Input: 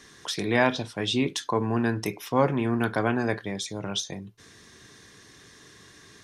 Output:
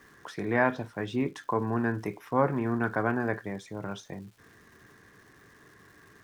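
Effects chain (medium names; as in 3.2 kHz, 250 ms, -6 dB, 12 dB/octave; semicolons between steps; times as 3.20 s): resonant high shelf 2.4 kHz -12.5 dB, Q 1.5; crackle 570 per s -48 dBFS; trim -3.5 dB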